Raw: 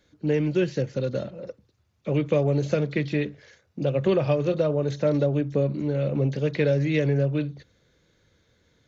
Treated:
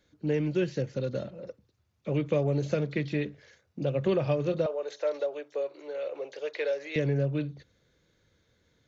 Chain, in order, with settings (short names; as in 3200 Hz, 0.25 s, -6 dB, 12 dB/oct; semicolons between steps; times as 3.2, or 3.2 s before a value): 4.66–6.96 inverse Chebyshev high-pass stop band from 220 Hz, stop band 40 dB; gain -4.5 dB